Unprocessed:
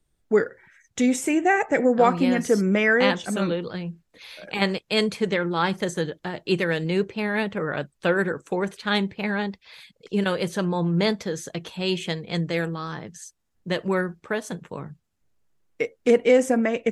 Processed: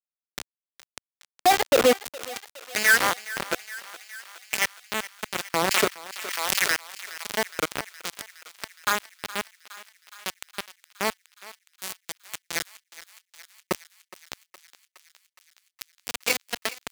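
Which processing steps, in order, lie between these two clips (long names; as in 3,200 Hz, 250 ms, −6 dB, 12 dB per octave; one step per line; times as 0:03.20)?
stylus tracing distortion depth 0.2 ms
auto-filter band-pass saw down 0.51 Hz 380–5,600 Hz
in parallel at +1 dB: downward compressor 5 to 1, threshold −46 dBFS, peak gain reduction 23.5 dB
on the sum: bit reduction 4 bits
high-pass filter 110 Hz 6 dB per octave
feedback echo with a high-pass in the loop 416 ms, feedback 75%, high-pass 790 Hz, level −16 dB
0:05.53–0:07.30: background raised ahead of every attack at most 34 dB per second
level +4 dB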